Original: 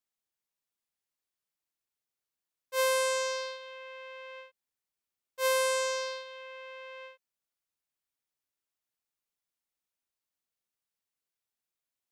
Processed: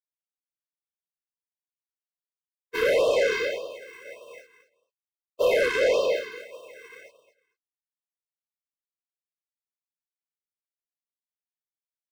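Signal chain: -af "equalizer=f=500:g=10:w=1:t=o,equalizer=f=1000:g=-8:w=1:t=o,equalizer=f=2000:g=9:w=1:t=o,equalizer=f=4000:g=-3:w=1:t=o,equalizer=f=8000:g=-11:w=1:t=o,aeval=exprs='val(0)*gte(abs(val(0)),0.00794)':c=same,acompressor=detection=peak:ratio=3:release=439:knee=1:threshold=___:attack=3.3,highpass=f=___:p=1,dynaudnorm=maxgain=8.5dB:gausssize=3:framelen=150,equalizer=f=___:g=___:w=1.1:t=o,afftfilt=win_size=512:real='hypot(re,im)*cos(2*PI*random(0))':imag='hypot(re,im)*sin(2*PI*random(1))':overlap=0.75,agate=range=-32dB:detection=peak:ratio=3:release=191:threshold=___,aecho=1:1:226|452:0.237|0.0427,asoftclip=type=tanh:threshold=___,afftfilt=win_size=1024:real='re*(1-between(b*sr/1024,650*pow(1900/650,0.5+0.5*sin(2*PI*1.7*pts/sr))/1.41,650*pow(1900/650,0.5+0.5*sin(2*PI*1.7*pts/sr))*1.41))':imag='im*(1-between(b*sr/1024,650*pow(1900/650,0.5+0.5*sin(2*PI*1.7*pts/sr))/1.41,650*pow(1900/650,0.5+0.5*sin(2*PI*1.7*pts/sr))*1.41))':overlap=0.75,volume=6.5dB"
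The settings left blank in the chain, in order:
-23dB, 390, 12000, -7, -29dB, -21.5dB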